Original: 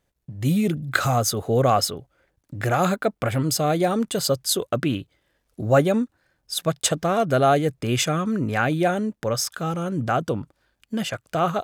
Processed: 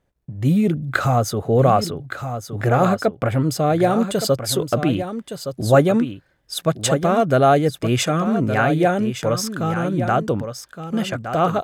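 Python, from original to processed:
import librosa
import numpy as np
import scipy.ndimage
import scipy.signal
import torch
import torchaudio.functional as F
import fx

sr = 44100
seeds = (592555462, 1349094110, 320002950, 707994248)

y = fx.high_shelf(x, sr, hz=2400.0, db=fx.steps((0.0, -10.5), (3.8, -5.5)))
y = y + 10.0 ** (-9.5 / 20.0) * np.pad(y, (int(1167 * sr / 1000.0), 0))[:len(y)]
y = F.gain(torch.from_numpy(y), 4.0).numpy()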